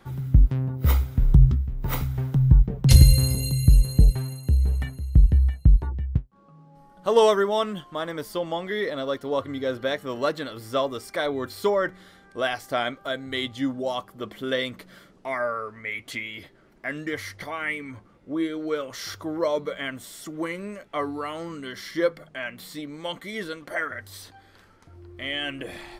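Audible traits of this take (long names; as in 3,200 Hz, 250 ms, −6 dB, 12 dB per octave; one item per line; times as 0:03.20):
background noise floor −55 dBFS
spectral slope −6.0 dB per octave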